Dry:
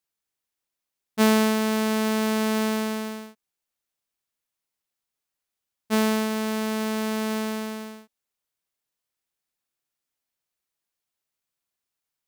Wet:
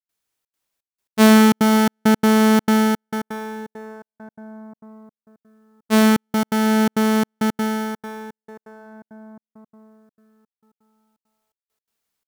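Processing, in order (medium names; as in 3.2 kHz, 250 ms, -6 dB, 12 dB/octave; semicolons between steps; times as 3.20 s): delay 428 ms -14.5 dB; plate-style reverb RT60 5 s, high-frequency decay 0.4×, DRR 4 dB; trance gate ".xxxx.xxx..x" 168 bpm -60 dB; trim +5.5 dB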